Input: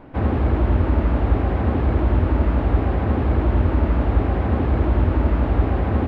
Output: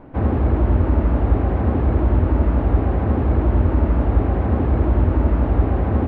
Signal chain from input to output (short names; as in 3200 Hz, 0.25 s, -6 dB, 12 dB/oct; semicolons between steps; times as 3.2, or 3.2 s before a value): high shelf 2100 Hz -10.5 dB; gain +1.5 dB